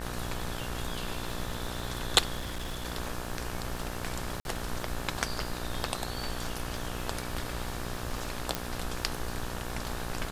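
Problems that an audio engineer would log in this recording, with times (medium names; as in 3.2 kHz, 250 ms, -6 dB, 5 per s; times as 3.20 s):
buzz 60 Hz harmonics 30 -39 dBFS
crackle 80 per s -38 dBFS
2.38–2.87 s: clipped -31.5 dBFS
4.40–4.45 s: dropout 51 ms
8.55 s: pop -12 dBFS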